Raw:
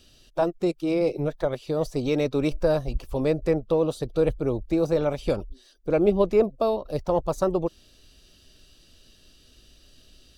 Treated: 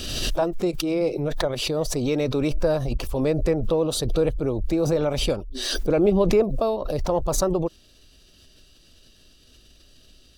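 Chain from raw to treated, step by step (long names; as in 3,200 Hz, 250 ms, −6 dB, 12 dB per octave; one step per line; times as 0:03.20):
background raised ahead of every attack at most 34 dB per second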